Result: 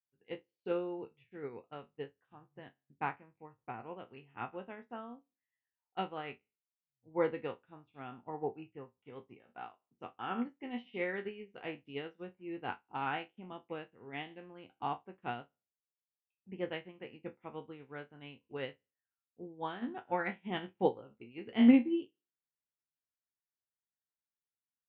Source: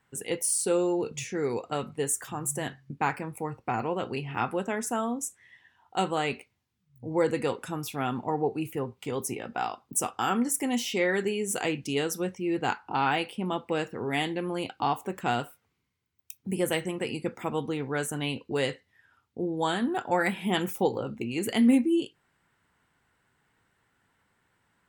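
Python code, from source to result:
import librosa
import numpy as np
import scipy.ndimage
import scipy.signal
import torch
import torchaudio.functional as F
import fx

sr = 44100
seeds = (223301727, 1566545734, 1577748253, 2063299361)

y = fx.spec_trails(x, sr, decay_s=0.38)
y = scipy.signal.sosfilt(scipy.signal.butter(6, 3200.0, 'lowpass', fs=sr, output='sos'), y)
y = fx.upward_expand(y, sr, threshold_db=-43.0, expansion=2.5)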